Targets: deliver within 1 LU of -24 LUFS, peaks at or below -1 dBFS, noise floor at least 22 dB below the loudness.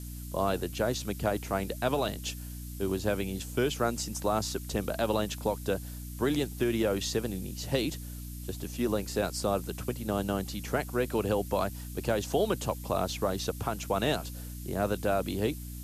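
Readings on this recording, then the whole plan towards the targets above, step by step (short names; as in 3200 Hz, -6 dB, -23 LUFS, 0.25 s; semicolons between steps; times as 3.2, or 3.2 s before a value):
hum 60 Hz; harmonics up to 300 Hz; hum level -38 dBFS; noise floor -41 dBFS; noise floor target -54 dBFS; loudness -31.5 LUFS; peak -15.0 dBFS; loudness target -24.0 LUFS
-> de-hum 60 Hz, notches 5; denoiser 13 dB, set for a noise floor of -41 dBFS; gain +7.5 dB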